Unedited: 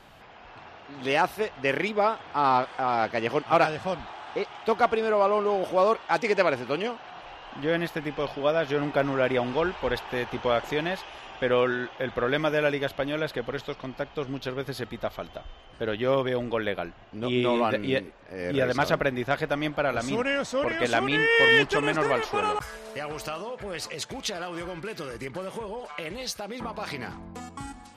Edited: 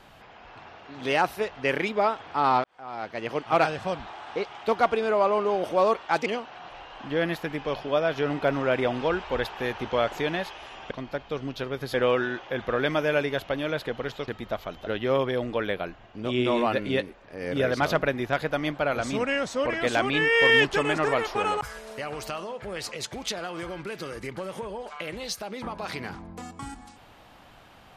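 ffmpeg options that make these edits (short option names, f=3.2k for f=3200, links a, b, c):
-filter_complex "[0:a]asplit=7[a][b][c][d][e][f][g];[a]atrim=end=2.64,asetpts=PTS-STARTPTS,afade=t=out:st=2.636:d=0.004:c=hsin[h];[b]atrim=start=2.64:end=6.262,asetpts=PTS-STARTPTS,afade=t=in:d=1.04[i];[c]atrim=start=6.778:end=11.432[j];[d]atrim=start=13.768:end=14.802[k];[e]atrim=start=11.428:end=13.772[l];[f]atrim=start=14.798:end=15.392[m];[g]atrim=start=15.848[n];[h][i]concat=n=2:v=0:a=1[o];[o][j]acrossfade=d=0.004:c1=hsin:c2=hsin[p];[p][k]acrossfade=d=0.004:c1=hsin:c2=hsin[q];[q][l]acrossfade=d=0.004:c1=hsin:c2=hsin[r];[r][m]acrossfade=d=0.004:c1=hsin:c2=hsin[s];[s][n]acrossfade=d=0.004:c1=hsin:c2=hsin"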